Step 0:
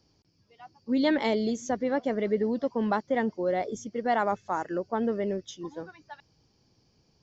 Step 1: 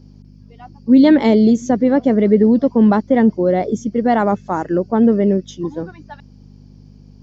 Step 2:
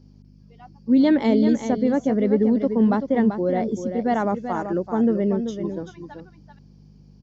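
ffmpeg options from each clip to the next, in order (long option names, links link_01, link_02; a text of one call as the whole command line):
ffmpeg -i in.wav -af "aeval=exprs='val(0)+0.002*(sin(2*PI*50*n/s)+sin(2*PI*2*50*n/s)/2+sin(2*PI*3*50*n/s)/3+sin(2*PI*4*50*n/s)/4+sin(2*PI*5*50*n/s)/5)':channel_layout=same,equalizer=frequency=190:width=0.48:gain=12.5,volume=5.5dB" out.wav
ffmpeg -i in.wav -af "aecho=1:1:386:0.376,volume=-7dB" out.wav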